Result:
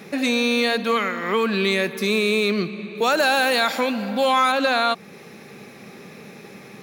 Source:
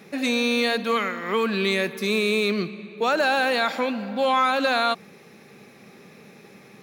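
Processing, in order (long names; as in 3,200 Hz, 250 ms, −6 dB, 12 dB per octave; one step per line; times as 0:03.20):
0:02.95–0:04.52: high-shelf EQ 5,700 Hz +11.5 dB
in parallel at +1 dB: downward compressor, threshold −32 dBFS, peak gain reduction 15 dB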